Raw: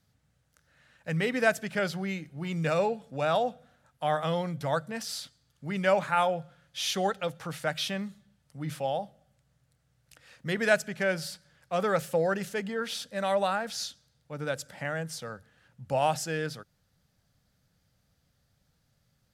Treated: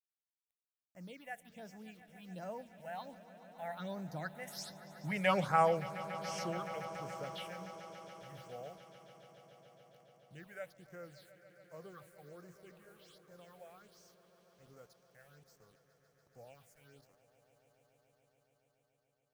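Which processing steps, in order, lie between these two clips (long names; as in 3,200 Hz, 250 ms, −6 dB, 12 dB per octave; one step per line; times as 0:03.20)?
source passing by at 0:05.26, 37 m/s, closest 13 metres
bit reduction 11 bits
all-pass phaser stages 6, 1.3 Hz, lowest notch 280–3,700 Hz
echo that builds up and dies away 142 ms, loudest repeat 5, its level −18 dB
level +1 dB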